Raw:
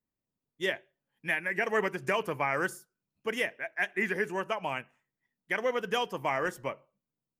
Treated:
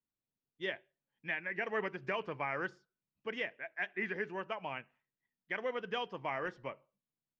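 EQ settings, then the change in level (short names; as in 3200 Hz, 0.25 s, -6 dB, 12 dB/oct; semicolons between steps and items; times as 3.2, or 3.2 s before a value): ladder low-pass 6300 Hz, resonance 20%; air absorption 220 m; high shelf 3700 Hz +7.5 dB; -2.0 dB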